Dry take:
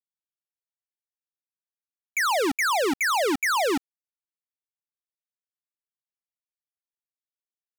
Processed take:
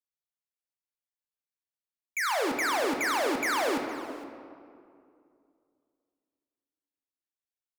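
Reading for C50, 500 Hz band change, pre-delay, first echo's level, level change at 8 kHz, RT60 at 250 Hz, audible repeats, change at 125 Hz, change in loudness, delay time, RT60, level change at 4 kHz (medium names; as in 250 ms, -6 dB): 5.0 dB, -4.0 dB, 3 ms, -17.5 dB, -5.5 dB, 2.8 s, 1, -3.5 dB, -4.5 dB, 462 ms, 2.4 s, -5.0 dB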